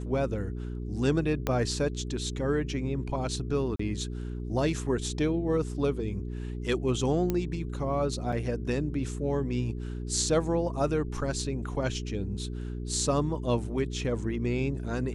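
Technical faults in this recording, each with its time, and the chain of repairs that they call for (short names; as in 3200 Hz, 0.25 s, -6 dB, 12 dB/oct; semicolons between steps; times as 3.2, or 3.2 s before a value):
hum 60 Hz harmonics 7 -35 dBFS
1.47 pop -13 dBFS
3.76–3.79 gap 34 ms
7.3 pop -15 dBFS
8.32–8.33 gap 5.9 ms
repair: de-click; de-hum 60 Hz, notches 7; interpolate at 3.76, 34 ms; interpolate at 8.32, 5.9 ms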